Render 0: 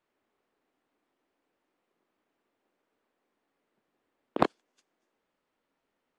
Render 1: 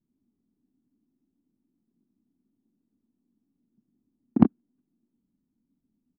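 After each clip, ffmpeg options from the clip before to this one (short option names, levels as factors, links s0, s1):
-af "lowshelf=f=350:t=q:w=3:g=13.5,aresample=11025,adynamicsmooth=sensitivity=1:basefreq=550,aresample=44100,volume=0.631"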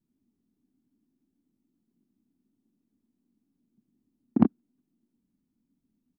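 -af "alimiter=limit=0.531:level=0:latency=1:release=28"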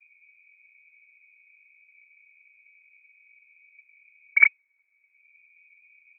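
-filter_complex "[0:a]acrossover=split=170|380|700[s0][s1][s2][s3];[s0]acompressor=mode=upward:threshold=0.00631:ratio=2.5[s4];[s4][s1][s2][s3]amix=inputs=4:normalize=0,lowpass=f=2100:t=q:w=0.5098,lowpass=f=2100:t=q:w=0.6013,lowpass=f=2100:t=q:w=0.9,lowpass=f=2100:t=q:w=2.563,afreqshift=-2500,volume=1.58"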